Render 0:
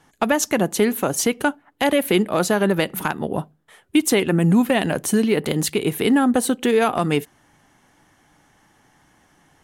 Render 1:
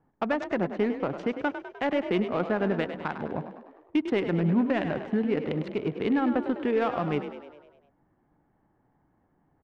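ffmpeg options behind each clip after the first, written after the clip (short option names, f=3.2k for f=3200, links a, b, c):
-filter_complex "[0:a]adynamicsmooth=sensitivity=1.5:basefreq=920,lowpass=2.7k,asplit=8[a][b][c][d][e][f][g][h];[b]adelay=101,afreqshift=38,volume=-10dB[i];[c]adelay=202,afreqshift=76,volume=-14.9dB[j];[d]adelay=303,afreqshift=114,volume=-19.8dB[k];[e]adelay=404,afreqshift=152,volume=-24.6dB[l];[f]adelay=505,afreqshift=190,volume=-29.5dB[m];[g]adelay=606,afreqshift=228,volume=-34.4dB[n];[h]adelay=707,afreqshift=266,volume=-39.3dB[o];[a][i][j][k][l][m][n][o]amix=inputs=8:normalize=0,volume=-8dB"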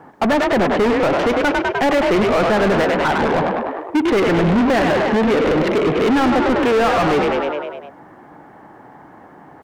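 -filter_complex "[0:a]asplit=2[a][b];[b]highpass=f=720:p=1,volume=34dB,asoftclip=type=tanh:threshold=-14.5dB[c];[a][c]amix=inputs=2:normalize=0,lowpass=f=2.2k:p=1,volume=-6dB,volume=5.5dB"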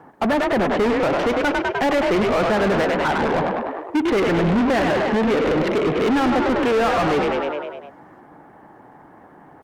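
-af "volume=-3dB" -ar 48000 -c:a libopus -b:a 48k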